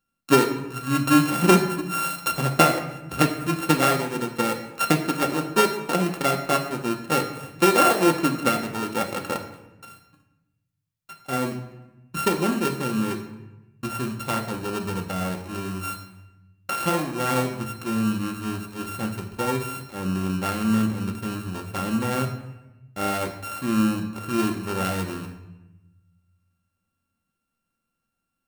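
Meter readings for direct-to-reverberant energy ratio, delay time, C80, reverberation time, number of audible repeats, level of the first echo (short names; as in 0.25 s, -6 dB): 3.0 dB, none, 11.0 dB, 1.0 s, none, none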